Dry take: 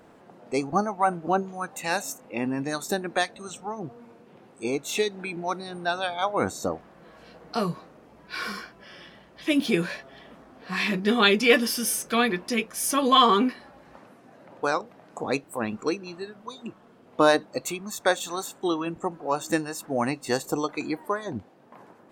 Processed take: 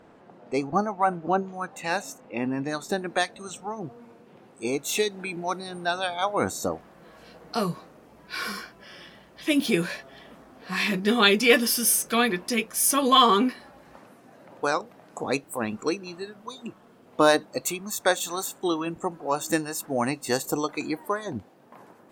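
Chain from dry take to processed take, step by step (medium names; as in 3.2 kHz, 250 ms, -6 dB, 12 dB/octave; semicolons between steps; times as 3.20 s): treble shelf 7.9 kHz -11.5 dB, from 2.98 s +2.5 dB, from 4.64 s +9 dB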